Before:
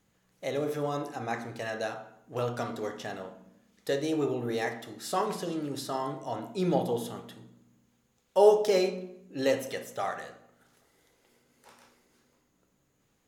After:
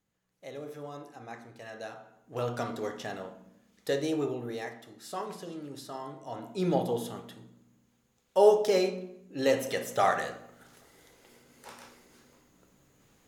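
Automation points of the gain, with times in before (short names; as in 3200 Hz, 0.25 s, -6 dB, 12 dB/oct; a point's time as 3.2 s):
1.59 s -10.5 dB
2.54 s 0 dB
4.06 s 0 dB
4.69 s -7.5 dB
6.12 s -7.5 dB
6.64 s -0.5 dB
9.38 s -0.5 dB
10.07 s +8 dB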